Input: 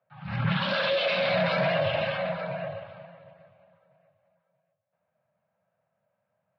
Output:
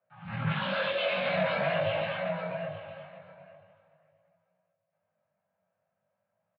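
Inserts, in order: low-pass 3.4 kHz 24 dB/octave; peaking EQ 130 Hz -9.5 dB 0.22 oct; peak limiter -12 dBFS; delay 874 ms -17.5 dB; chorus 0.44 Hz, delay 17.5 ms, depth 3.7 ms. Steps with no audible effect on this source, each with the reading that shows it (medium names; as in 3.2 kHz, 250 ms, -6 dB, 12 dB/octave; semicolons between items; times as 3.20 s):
peak limiter -12 dBFS: peak at its input -15.0 dBFS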